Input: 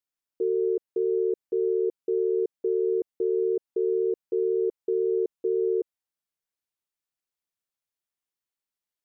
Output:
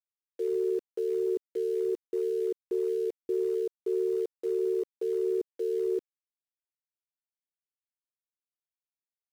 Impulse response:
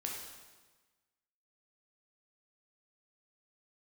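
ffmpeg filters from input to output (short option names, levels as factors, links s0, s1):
-filter_complex "[0:a]atempo=0.97,acrossover=split=430[s0][s1];[s0]aeval=exprs='val(0)*(1-1/2+1/2*cos(2*PI*1.5*n/s))':c=same[s2];[s1]aeval=exprs='val(0)*(1-1/2-1/2*cos(2*PI*1.5*n/s))':c=same[s3];[s2][s3]amix=inputs=2:normalize=0,aeval=exprs='val(0)*gte(abs(val(0)),0.00422)':c=same,volume=1.26"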